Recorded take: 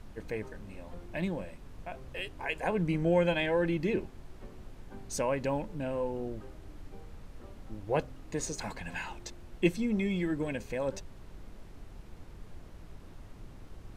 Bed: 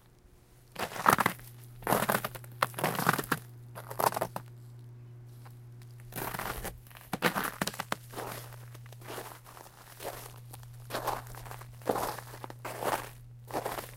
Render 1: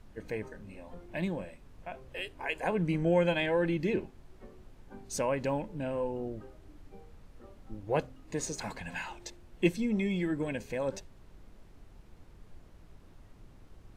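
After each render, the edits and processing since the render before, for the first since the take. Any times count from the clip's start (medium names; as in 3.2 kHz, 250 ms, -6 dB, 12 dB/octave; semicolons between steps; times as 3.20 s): noise print and reduce 6 dB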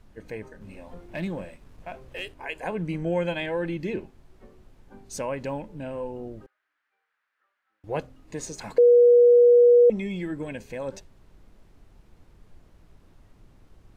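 0.61–2.34 s: waveshaping leveller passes 1; 6.46–7.84 s: ladder band-pass 1.8 kHz, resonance 55%; 8.78–9.90 s: bleep 482 Hz -11.5 dBFS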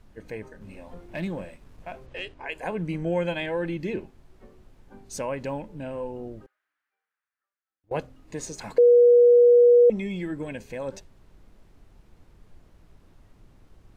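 2.06–2.52 s: low-pass 5.8 kHz; 6.33–7.91 s: fade out quadratic, to -22.5 dB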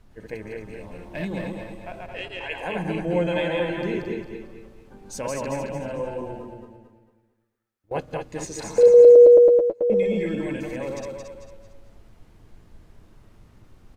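backward echo that repeats 109 ms, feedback 51%, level -1.5 dB; feedback delay 227 ms, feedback 34%, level -7 dB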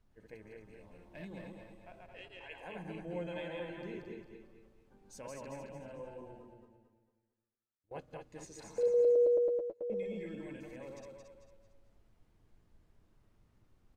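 trim -17 dB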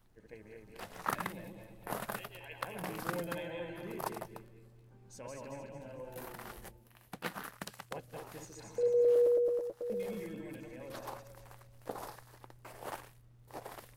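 add bed -11.5 dB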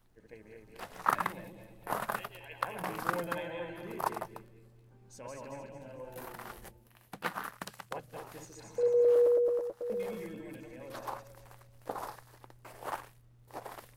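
hum notches 50/100/150/200 Hz; dynamic bell 1.1 kHz, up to +8 dB, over -50 dBFS, Q 0.94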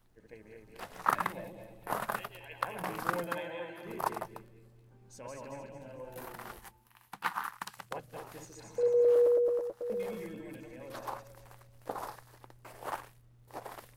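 1.35–1.80 s: peaking EQ 630 Hz +7.5 dB; 3.24–3.85 s: high-pass 130 Hz -> 420 Hz 6 dB/octave; 6.59–7.77 s: resonant low shelf 730 Hz -6.5 dB, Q 3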